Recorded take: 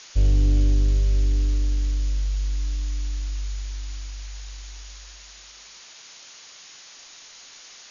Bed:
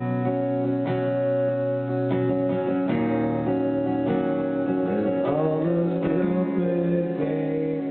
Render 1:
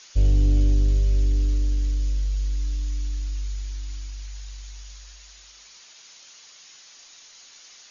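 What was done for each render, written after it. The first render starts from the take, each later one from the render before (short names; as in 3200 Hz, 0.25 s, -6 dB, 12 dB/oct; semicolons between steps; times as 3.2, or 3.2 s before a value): denoiser 6 dB, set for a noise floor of -46 dBFS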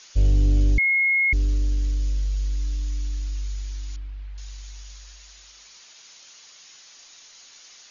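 0.78–1.33 bleep 2160 Hz -17 dBFS; 3.96–4.38 air absorption 470 m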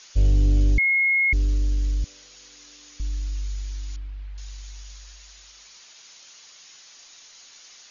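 2.04–3 HPF 530 Hz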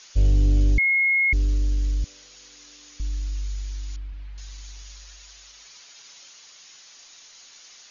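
4.12–6.28 comb 7.1 ms, depth 53%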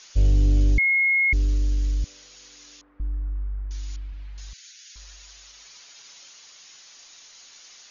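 2.81–3.71 LPF 1400 Hz 24 dB/oct; 4.53–4.96 steep high-pass 1400 Hz 96 dB/oct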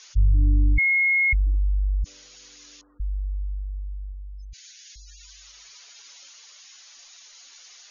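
spectral gate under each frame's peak -20 dB strong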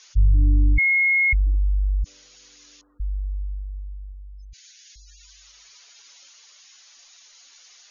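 in parallel at -2 dB: limiter -21.5 dBFS, peak gain reduction 10 dB; on the sum: upward expander 1.5:1, over -28 dBFS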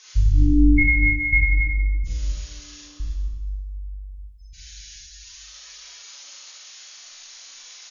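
outdoor echo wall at 48 m, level -7 dB; Schroeder reverb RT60 1.1 s, combs from 30 ms, DRR -6.5 dB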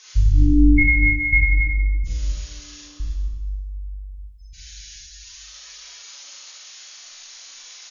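gain +1.5 dB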